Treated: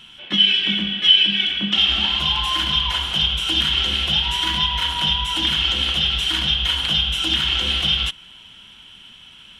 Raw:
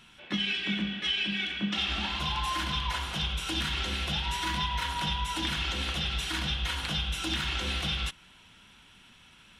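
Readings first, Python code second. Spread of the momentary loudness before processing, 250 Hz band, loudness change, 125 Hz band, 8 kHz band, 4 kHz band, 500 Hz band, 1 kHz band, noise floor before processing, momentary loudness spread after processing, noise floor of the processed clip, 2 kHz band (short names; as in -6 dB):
2 LU, +5.0 dB, +13.0 dB, +5.0 dB, +5.0 dB, +15.5 dB, +5.0 dB, +5.0 dB, -56 dBFS, 5 LU, -45 dBFS, +8.0 dB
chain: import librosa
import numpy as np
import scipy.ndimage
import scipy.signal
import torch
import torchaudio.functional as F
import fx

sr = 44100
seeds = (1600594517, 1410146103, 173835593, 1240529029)

y = fx.peak_eq(x, sr, hz=3100.0, db=14.5, octaves=0.26)
y = F.gain(torch.from_numpy(y), 5.0).numpy()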